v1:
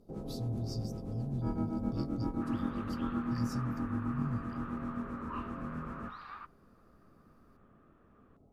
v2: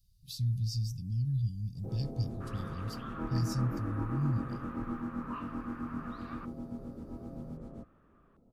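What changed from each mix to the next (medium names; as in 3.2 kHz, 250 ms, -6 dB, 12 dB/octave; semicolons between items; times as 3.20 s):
speech +6.0 dB; first sound: entry +1.75 s; reverb: off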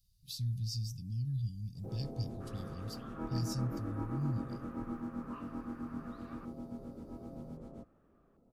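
second sound -7.5 dB; master: add bass shelf 260 Hz -5.5 dB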